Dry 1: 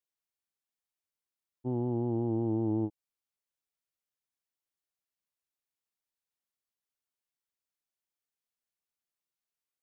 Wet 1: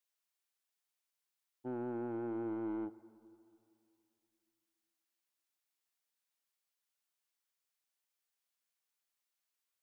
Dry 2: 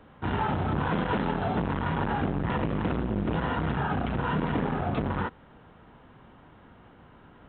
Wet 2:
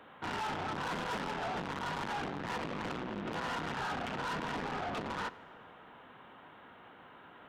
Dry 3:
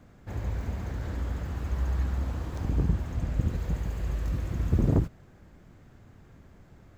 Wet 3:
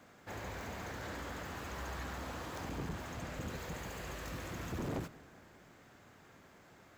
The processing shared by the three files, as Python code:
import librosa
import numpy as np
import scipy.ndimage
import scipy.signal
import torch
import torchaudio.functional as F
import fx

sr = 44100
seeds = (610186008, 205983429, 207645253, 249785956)

y = fx.highpass(x, sr, hz=780.0, slope=6)
y = 10.0 ** (-38.0 / 20.0) * np.tanh(y / 10.0 ** (-38.0 / 20.0))
y = fx.rev_plate(y, sr, seeds[0], rt60_s=2.7, hf_ratio=0.5, predelay_ms=0, drr_db=17.0)
y = F.gain(torch.from_numpy(y), 4.0).numpy()